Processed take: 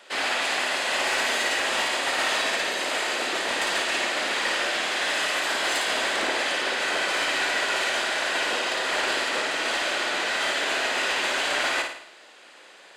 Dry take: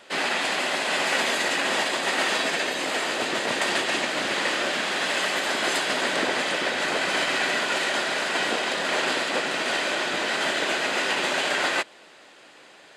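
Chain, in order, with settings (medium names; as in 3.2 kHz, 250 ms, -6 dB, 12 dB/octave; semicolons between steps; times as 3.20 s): high-pass 160 Hz; bass shelf 270 Hz -11.5 dB; saturation -18 dBFS, distortion -20 dB; on a send: flutter echo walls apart 9.4 m, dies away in 0.61 s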